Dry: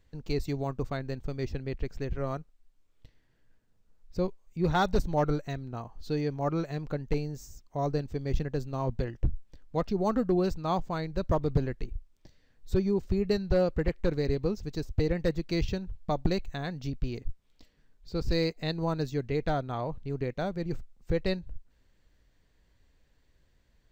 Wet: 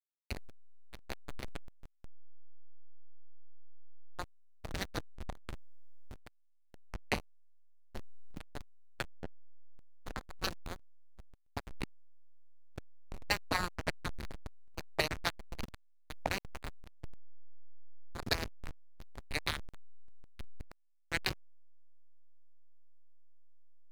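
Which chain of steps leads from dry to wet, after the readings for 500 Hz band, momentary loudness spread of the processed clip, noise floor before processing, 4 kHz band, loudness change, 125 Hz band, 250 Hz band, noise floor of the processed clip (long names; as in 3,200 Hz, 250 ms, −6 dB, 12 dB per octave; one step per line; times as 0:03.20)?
−16.5 dB, 21 LU, −67 dBFS, +0.5 dB, −8.5 dB, −16.5 dB, −17.5 dB, −65 dBFS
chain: gate on every frequency bin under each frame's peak −25 dB weak
rotating-speaker cabinet horn 0.65 Hz
slack as between gear wheels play −36 dBFS
level +18 dB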